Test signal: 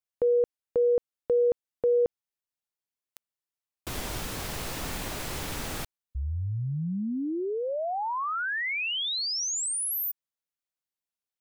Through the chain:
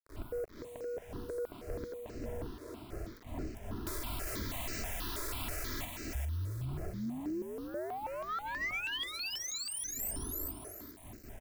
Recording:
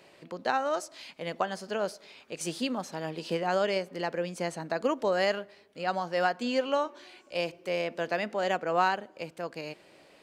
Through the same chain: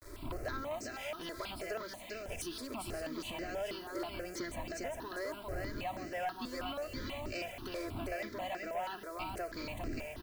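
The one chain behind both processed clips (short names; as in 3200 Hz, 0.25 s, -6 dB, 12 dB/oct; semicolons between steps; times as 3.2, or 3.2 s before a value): wind noise 320 Hz -42 dBFS; expander -44 dBFS; high shelf 7300 Hz +2.5 dB; comb 3 ms, depth 67%; compressor 8:1, threshold -41 dBFS; on a send: thinning echo 0.402 s, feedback 27%, high-pass 230 Hz, level -4 dB; on the sum: bit-crush 10-bit; soft clip -38 dBFS; step phaser 6.2 Hz 770–3400 Hz; gain +8.5 dB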